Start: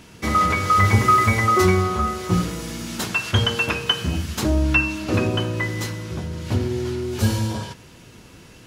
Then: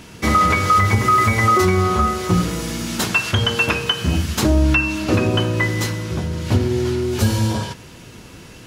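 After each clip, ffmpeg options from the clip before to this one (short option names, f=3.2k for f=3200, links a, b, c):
-af "alimiter=limit=-11.5dB:level=0:latency=1:release=225,volume=5.5dB"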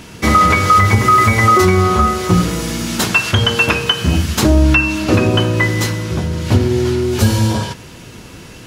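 -af "aeval=exprs='0.531*(cos(1*acos(clip(val(0)/0.531,-1,1)))-cos(1*PI/2))+0.00668*(cos(2*acos(clip(val(0)/0.531,-1,1)))-cos(2*PI/2))':c=same,volume=4.5dB"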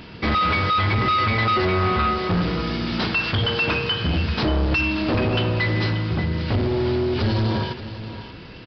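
-af "volume=14dB,asoftclip=hard,volume=-14dB,aecho=1:1:583:0.237,aresample=11025,aresample=44100,volume=-4dB"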